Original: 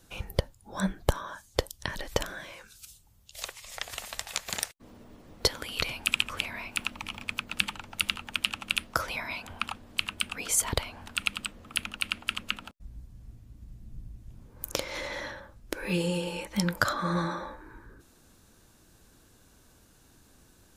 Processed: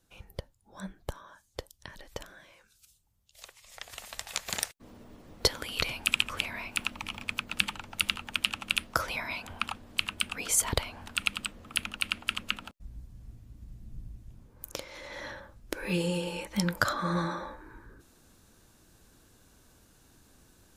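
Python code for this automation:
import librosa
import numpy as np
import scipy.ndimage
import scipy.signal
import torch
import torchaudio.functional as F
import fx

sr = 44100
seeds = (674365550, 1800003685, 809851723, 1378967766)

y = fx.gain(x, sr, db=fx.line((3.4, -12.0), (4.47, 0.0), (14.13, 0.0), (14.99, -10.0), (15.32, -1.0)))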